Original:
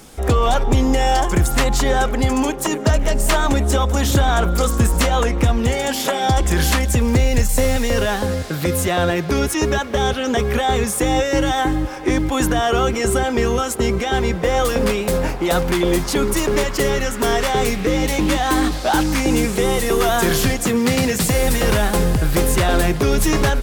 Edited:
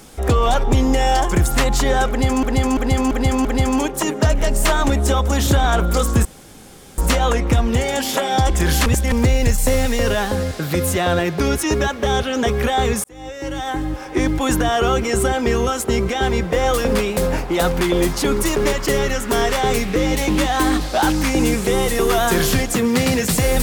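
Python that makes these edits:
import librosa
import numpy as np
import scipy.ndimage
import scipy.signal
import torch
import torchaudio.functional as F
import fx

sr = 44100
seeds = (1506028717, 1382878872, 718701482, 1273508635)

y = fx.edit(x, sr, fx.repeat(start_s=2.09, length_s=0.34, count=5),
    fx.insert_room_tone(at_s=4.89, length_s=0.73),
    fx.reverse_span(start_s=6.77, length_s=0.26),
    fx.fade_in_span(start_s=10.95, length_s=1.25), tone=tone)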